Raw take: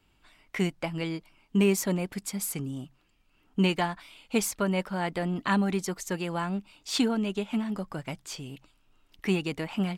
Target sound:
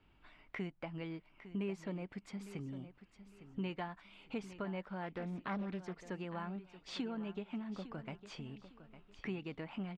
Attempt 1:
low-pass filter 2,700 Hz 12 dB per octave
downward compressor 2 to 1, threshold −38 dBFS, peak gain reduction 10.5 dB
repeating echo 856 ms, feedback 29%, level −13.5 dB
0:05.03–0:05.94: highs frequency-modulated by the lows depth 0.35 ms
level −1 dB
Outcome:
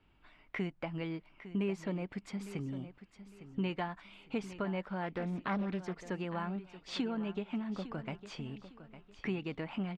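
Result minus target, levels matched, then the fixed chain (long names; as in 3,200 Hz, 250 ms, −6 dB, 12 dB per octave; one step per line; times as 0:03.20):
downward compressor: peak gain reduction −5 dB
low-pass filter 2,700 Hz 12 dB per octave
downward compressor 2 to 1, threshold −48 dBFS, peak gain reduction 15.5 dB
repeating echo 856 ms, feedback 29%, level −13.5 dB
0:05.03–0:05.94: highs frequency-modulated by the lows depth 0.35 ms
level −1 dB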